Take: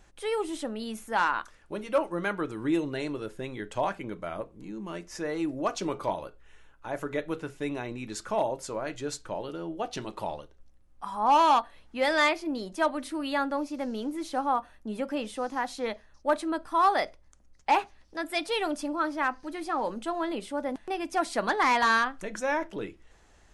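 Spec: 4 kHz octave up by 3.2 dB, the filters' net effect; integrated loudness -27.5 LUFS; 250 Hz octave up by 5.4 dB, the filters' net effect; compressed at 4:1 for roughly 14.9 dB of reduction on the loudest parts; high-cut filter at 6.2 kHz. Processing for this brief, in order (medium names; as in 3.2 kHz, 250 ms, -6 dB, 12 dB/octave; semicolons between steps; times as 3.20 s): low-pass 6.2 kHz; peaking EQ 250 Hz +7 dB; peaking EQ 4 kHz +4.5 dB; compression 4:1, threshold -36 dBFS; trim +11 dB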